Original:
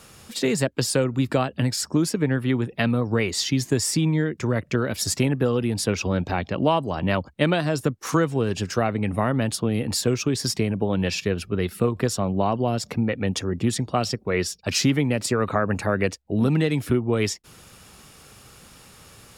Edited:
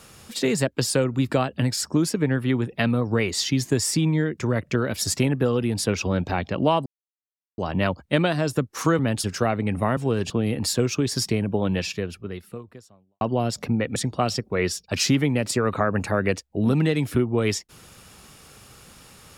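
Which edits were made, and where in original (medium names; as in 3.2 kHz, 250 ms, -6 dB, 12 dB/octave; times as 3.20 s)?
6.86 s: insert silence 0.72 s
8.27–8.60 s: swap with 9.33–9.58 s
10.96–12.49 s: fade out quadratic
13.24–13.71 s: delete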